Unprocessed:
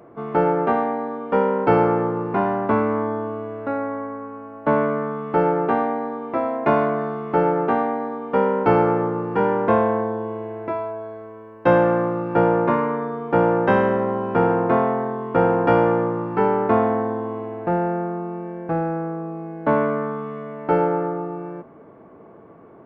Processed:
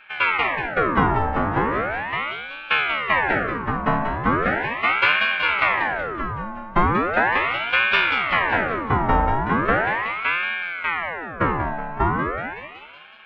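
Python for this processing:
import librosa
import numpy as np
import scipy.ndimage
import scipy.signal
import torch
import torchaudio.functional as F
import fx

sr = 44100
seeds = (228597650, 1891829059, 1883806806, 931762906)

y = fx.dynamic_eq(x, sr, hz=1100.0, q=3.4, threshold_db=-34.0, ratio=4.0, max_db=-3)
y = fx.stretch_vocoder(y, sr, factor=0.58)
y = fx.echo_thinned(y, sr, ms=187, feedback_pct=68, hz=630.0, wet_db=-4.5)
y = fx.ring_lfo(y, sr, carrier_hz=1200.0, swing_pct=65, hz=0.38)
y = y * 10.0 ** (2.0 / 20.0)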